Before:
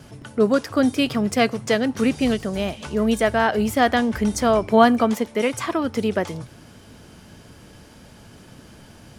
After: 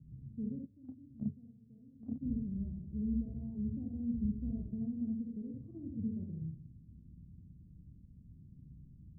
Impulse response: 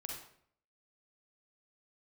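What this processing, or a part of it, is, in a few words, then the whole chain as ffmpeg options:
club heard from the street: -filter_complex "[0:a]alimiter=limit=-10.5dB:level=0:latency=1:release=216,lowpass=frequency=200:width=0.5412,lowpass=frequency=200:width=1.3066[link_01];[1:a]atrim=start_sample=2205[link_02];[link_01][link_02]afir=irnorm=-1:irlink=0,asplit=3[link_03][link_04][link_05];[link_03]afade=type=out:start_time=0.65:duration=0.02[link_06];[link_04]agate=range=-16dB:threshold=-29dB:ratio=16:detection=peak,afade=type=in:start_time=0.65:duration=0.02,afade=type=out:start_time=2.21:duration=0.02[link_07];[link_05]afade=type=in:start_time=2.21:duration=0.02[link_08];[link_06][link_07][link_08]amix=inputs=3:normalize=0,volume=-5dB"

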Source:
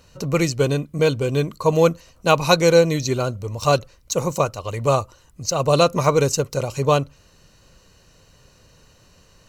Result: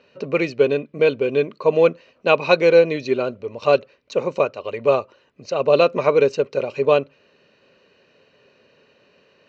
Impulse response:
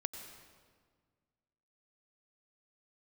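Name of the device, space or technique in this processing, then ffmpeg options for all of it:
kitchen radio: -af "highpass=210,equalizer=frequency=240:width_type=q:width=4:gain=6,equalizer=frequency=410:width_type=q:width=4:gain=10,equalizer=frequency=580:width_type=q:width=4:gain=7,equalizer=frequency=1700:width_type=q:width=4:gain=5,equalizer=frequency=2500:width_type=q:width=4:gain=9,lowpass=frequency=4200:width=0.5412,lowpass=frequency=4200:width=1.3066,volume=-4.5dB"

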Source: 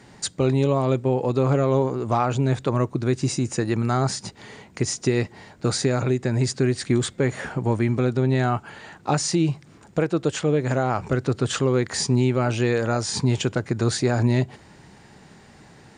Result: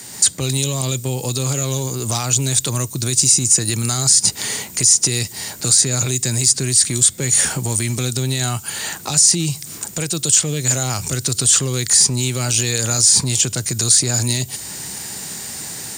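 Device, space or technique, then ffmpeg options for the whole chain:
FM broadcast chain: -filter_complex "[0:a]highpass=55,dynaudnorm=framelen=120:gausssize=3:maxgain=6dB,acrossover=split=160|3000[link_01][link_02][link_03];[link_01]acompressor=threshold=-25dB:ratio=4[link_04];[link_02]acompressor=threshold=-31dB:ratio=4[link_05];[link_03]acompressor=threshold=-33dB:ratio=4[link_06];[link_04][link_05][link_06]amix=inputs=3:normalize=0,aemphasis=mode=production:type=75fm,alimiter=limit=-17.5dB:level=0:latency=1:release=19,asoftclip=type=hard:threshold=-19dB,lowpass=frequency=15000:width=0.5412,lowpass=frequency=15000:width=1.3066,aemphasis=mode=production:type=75fm,volume=5dB"

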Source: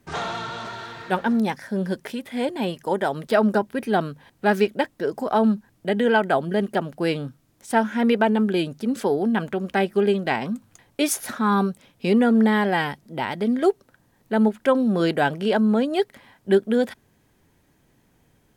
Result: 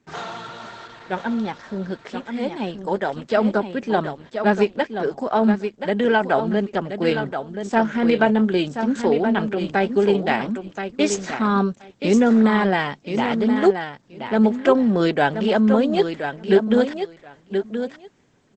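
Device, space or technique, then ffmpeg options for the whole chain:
video call: -filter_complex "[0:a]asettb=1/sr,asplit=3[link_01][link_02][link_03];[link_01]atrim=end=7.064[link_04];[link_02]atrim=start=7.06:end=8.85,asetpts=PTS-STARTPTS,afade=type=in:duration=0.004:curve=qsin,afade=type=out:start_time=1.786:duration=0.004:curve=qsin,asplit=2[link_05][link_06];[link_06]adelay=27,volume=-13.5dB[link_07];[link_05][link_07]amix=inputs=2:normalize=0,atrim=end_sample=78939[link_08];[link_03]atrim=start=8.846[link_09];[link_04][link_08]acrossfade=duration=0.004:curve1=hsin:curve2=qsin[link_10];[link_10][link_09]acrossfade=duration=0.004:curve1=qsin:curve2=hsin,highpass=130,aecho=1:1:1027|2054:0.398|0.0597,dynaudnorm=framelen=780:gausssize=7:maxgain=12dB,volume=-2.5dB" -ar 48000 -c:a libopus -b:a 12k

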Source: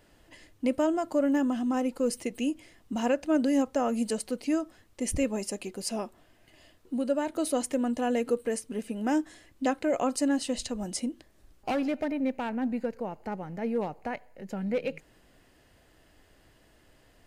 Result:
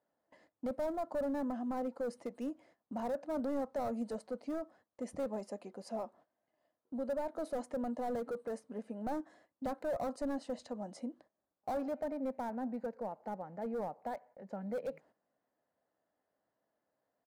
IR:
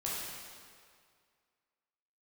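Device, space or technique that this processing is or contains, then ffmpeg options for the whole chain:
walkie-talkie: -af "highpass=450,lowpass=2700,asoftclip=type=hard:threshold=-31dB,agate=range=-14dB:threshold=-58dB:ratio=16:detection=peak,firequalizer=gain_entry='entry(210,0);entry(360,-12);entry(560,-5);entry(2700,-24);entry(4100,-14);entry(11000,-2)':delay=0.05:min_phase=1,volume=4.5dB"

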